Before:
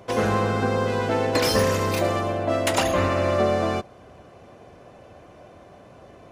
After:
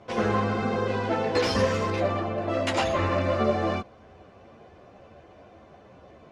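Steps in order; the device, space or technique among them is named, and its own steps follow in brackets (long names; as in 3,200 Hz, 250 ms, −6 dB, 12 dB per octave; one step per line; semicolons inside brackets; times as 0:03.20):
string-machine ensemble chorus (string-ensemble chorus; low-pass filter 5,300 Hz 12 dB per octave)
0:01.90–0:02.38: high-shelf EQ 5,100 Hz −11 dB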